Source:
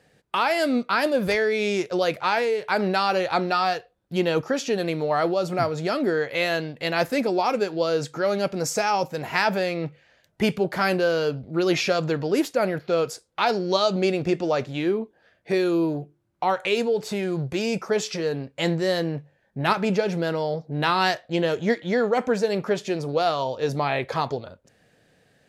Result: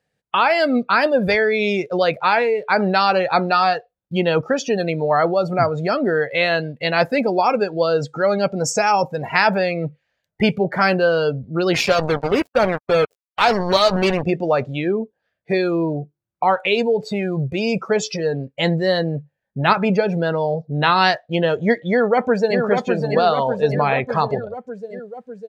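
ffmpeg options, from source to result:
-filter_complex "[0:a]asettb=1/sr,asplit=3[a][b][c];[a]atrim=end=11.744[d];[b]atrim=start=11.74:end=14.23,asetpts=PTS-STARTPTS,afade=t=in:d=0.004:c=qsin,afade=t=out:st=2.486:d=0.004:c=qsin,acrusher=bits=3:mix=0:aa=0.5[e];[c]atrim=start=14.226[f];[d][e]acrossfade=d=0.004:c1=hsin:c2=qsin[g];[g][f]acrossfade=d=0.004:c1=qsin:c2=hsin,asplit=2[h][i];[i]afade=t=in:st=21.9:d=0.01,afade=t=out:st=22.59:d=0.01,aecho=0:1:600|1200|1800|2400|3000|3600|4200|4800|5400|6000|6600|7200:0.595662|0.416964|0.291874|0.204312|0.143018|0.100113|0.0700791|0.0490553|0.0343387|0.0240371|0.016826|0.0117782[j];[h][j]amix=inputs=2:normalize=0,afftdn=nr=20:nf=-33,equalizer=f=330:t=o:w=0.64:g=-5.5,volume=6.5dB"

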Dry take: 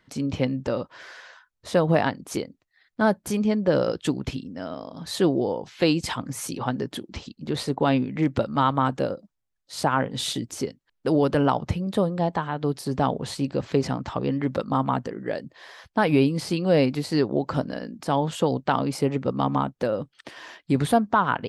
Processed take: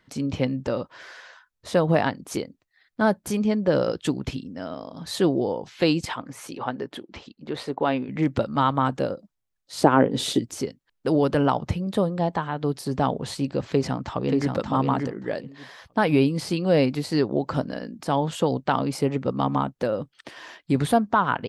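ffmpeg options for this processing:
-filter_complex "[0:a]asettb=1/sr,asplit=3[a][b][c];[a]atrim=end=6.054[d];[b]atrim=start=6.05:end=8.09,asetpts=PTS-STARTPTS,afade=t=in:d=0.004:c=qsin,afade=t=out:st=2.036:d=0.004:c=qsin,bass=f=250:g=-10,treble=f=4k:g=-10[e];[c]atrim=start=8.086[f];[d][e]acrossfade=d=0.004:c1=hsin:c2=qsin[g];[g][f]acrossfade=d=0.004:c1=qsin:c2=hsin,asettb=1/sr,asplit=3[h][i][j];[h]atrim=end=9.824[k];[i]atrim=start=9.82:end=10.39,asetpts=PTS-STARTPTS,afade=t=in:d=0.004:c=qsin,afade=t=out:st=0.566:d=0.004:c=qsin,equalizer=f=360:w=0.9:g=12.5[l];[j]atrim=start=10.386[m];[k][l]acrossfade=d=0.004:c1=hsin:c2=qsin[n];[n][m]acrossfade=d=0.004:c1=qsin:c2=hsin,asplit=2[o][p];[p]afade=t=in:st=13.7:d=0.01,afade=t=out:st=14.53:d=0.01,aecho=0:1:580|1160|1740:0.630957|0.0946436|0.0141965[q];[o][q]amix=inputs=2:normalize=0"

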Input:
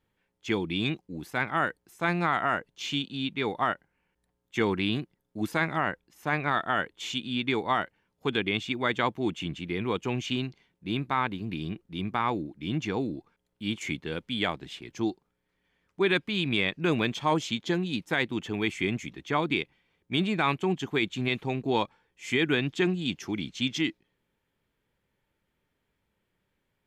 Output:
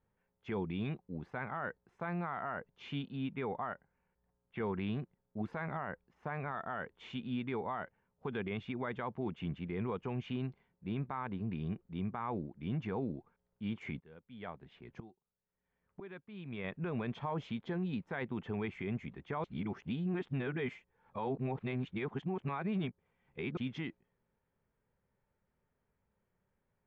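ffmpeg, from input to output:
-filter_complex "[0:a]asettb=1/sr,asplit=3[a][b][c];[a]atrim=end=3.164[d];[b]atrim=start=3.16:end=4.62,asetpts=PTS-STARTPTS,afade=t=in:d=0.004:c=qsin,afade=t=out:st=1.456:d=0.004:c=qsin,lowpass=f=3.6k:w=0.5412,lowpass=f=3.6k:w=1.3066[e];[c]atrim=start=4.616[f];[d][e]acrossfade=d=0.004:c1=hsin:c2=qsin[g];[g][f]acrossfade=d=0.004:c1=qsin:c2=hsin,asplit=3[h][i][j];[h]afade=t=out:st=13.99:d=0.02[k];[i]aeval=exprs='val(0)*pow(10,-21*if(lt(mod(-1*n/s,1),2*abs(-1)/1000),1-mod(-1*n/s,1)/(2*abs(-1)/1000),(mod(-1*n/s,1)-2*abs(-1)/1000)/(1-2*abs(-1)/1000))/20)':c=same,afade=t=in:st=13.99:d=0.02,afade=t=out:st=16.64:d=0.02[l];[j]afade=t=in:st=16.64:d=0.02[m];[k][l][m]amix=inputs=3:normalize=0,asplit=3[n][o][p];[n]atrim=end=19.442[q];[o]atrim=start=19.438:end=23.572,asetpts=PTS-STARTPTS,areverse[r];[p]atrim=start=23.568[s];[q][r]acrossfade=d=0.004:c1=hsin:c2=hsin[t];[t][s]acrossfade=d=0.004:c1=hsin:c2=hsin,lowpass=1.4k,equalizer=f=310:t=o:w=0.22:g=-14,alimiter=level_in=2.5dB:limit=-24dB:level=0:latency=1:release=49,volume=-2.5dB,volume=-2dB"

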